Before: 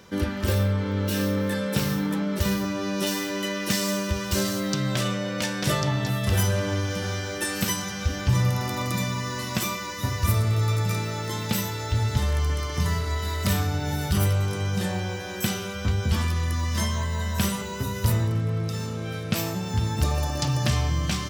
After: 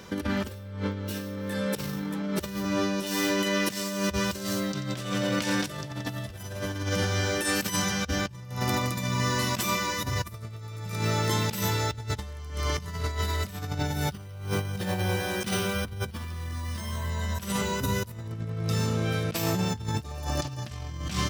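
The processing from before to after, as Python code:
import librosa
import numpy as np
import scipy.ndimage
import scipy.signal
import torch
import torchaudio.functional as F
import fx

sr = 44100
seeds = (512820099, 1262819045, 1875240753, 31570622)

y = fx.echo_crushed(x, sr, ms=88, feedback_pct=80, bits=8, wet_db=-12, at=(4.69, 6.83))
y = fx.resample_bad(y, sr, factor=3, down='filtered', up='hold', at=(14.1, 17.1))
y = fx.over_compress(y, sr, threshold_db=-29.0, ratio=-0.5)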